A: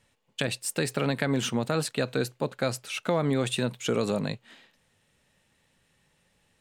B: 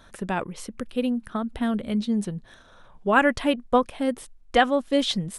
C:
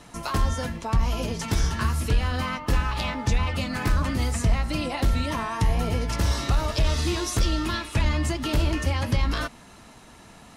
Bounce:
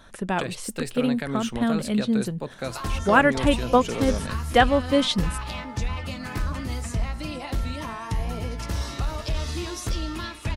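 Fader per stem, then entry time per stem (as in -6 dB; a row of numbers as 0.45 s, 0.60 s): -4.0 dB, +1.5 dB, -5.0 dB; 0.00 s, 0.00 s, 2.50 s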